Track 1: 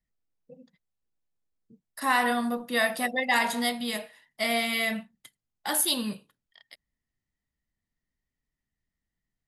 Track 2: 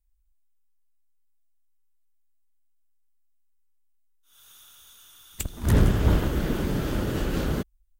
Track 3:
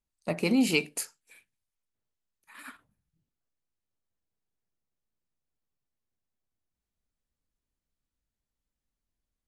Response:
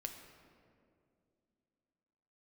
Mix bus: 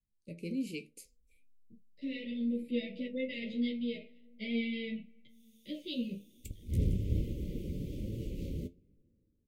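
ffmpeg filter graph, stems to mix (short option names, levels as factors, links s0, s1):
-filter_complex "[0:a]lowpass=f=3300:w=0.5412,lowpass=f=3300:w=1.3066,equalizer=f=1800:w=1.8:g=-3.5,asplit=2[s0][s1];[s1]adelay=11.4,afreqshift=0.9[s2];[s0][s2]amix=inputs=2:normalize=1,volume=0.708,asplit=2[s3][s4];[s4]volume=0.15[s5];[1:a]acompressor=mode=upward:threshold=0.00398:ratio=2.5,adelay=1050,volume=0.168,asplit=2[s6][s7];[s7]volume=0.126[s8];[2:a]volume=0.188[s9];[3:a]atrim=start_sample=2205[s10];[s5][s8]amix=inputs=2:normalize=0[s11];[s11][s10]afir=irnorm=-1:irlink=0[s12];[s3][s6][s9][s12]amix=inputs=4:normalize=0,lowshelf=f=380:g=9.5,flanger=delay=8.6:depth=3.5:regen=64:speed=1.1:shape=triangular,asuperstop=centerf=1100:order=20:qfactor=0.74"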